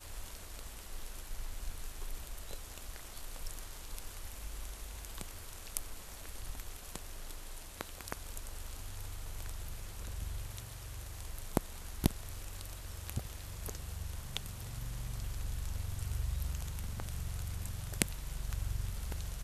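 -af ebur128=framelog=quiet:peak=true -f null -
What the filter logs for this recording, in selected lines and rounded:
Integrated loudness:
  I:         -43.0 LUFS
  Threshold: -53.0 LUFS
Loudness range:
  LRA:         7.2 LU
  Threshold: -63.1 LUFS
  LRA low:   -46.9 LUFS
  LRA high:  -39.7 LUFS
True peak:
  Peak:       -6.7 dBFS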